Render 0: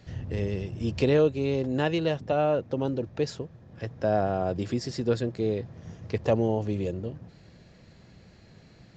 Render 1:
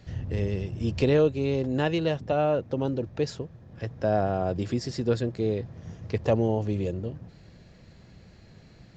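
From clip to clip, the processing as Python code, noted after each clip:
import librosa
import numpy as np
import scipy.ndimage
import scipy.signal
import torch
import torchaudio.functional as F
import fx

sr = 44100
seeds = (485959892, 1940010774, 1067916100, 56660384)

y = fx.low_shelf(x, sr, hz=75.0, db=6.5)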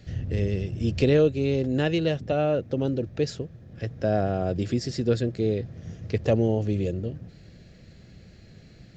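y = fx.peak_eq(x, sr, hz=960.0, db=-10.5, octaves=0.69)
y = F.gain(torch.from_numpy(y), 2.5).numpy()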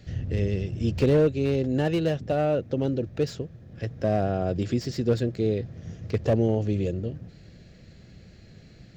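y = fx.slew_limit(x, sr, full_power_hz=69.0)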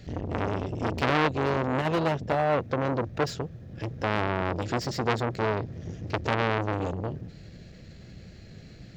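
y = fx.transformer_sat(x, sr, knee_hz=2100.0)
y = F.gain(torch.from_numpy(y), 3.5).numpy()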